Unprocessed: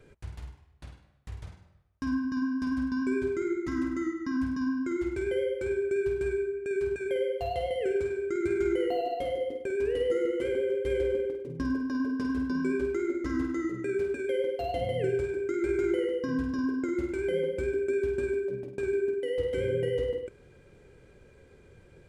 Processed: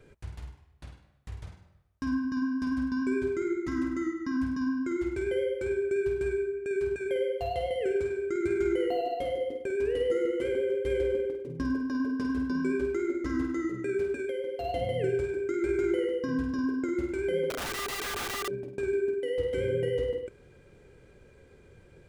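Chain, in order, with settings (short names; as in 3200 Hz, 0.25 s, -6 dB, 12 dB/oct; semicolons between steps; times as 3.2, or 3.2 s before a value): 14.22–14.65 compressor, threshold -30 dBFS, peak gain reduction 6 dB; 17.5–18.48 wrapped overs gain 29.5 dB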